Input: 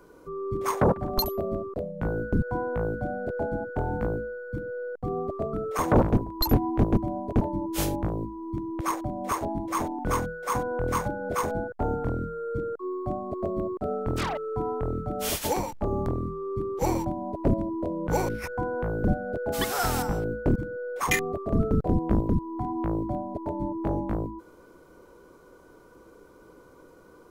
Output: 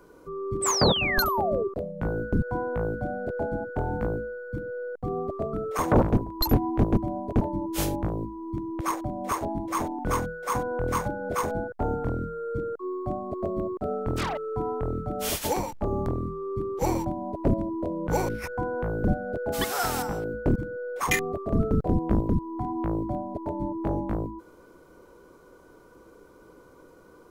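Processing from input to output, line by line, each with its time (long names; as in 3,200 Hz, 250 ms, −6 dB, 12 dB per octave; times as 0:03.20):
0:00.62–0:01.68: sound drawn into the spectrogram fall 370–8,500 Hz −27 dBFS
0:19.64–0:20.34: low-shelf EQ 160 Hz −8.5 dB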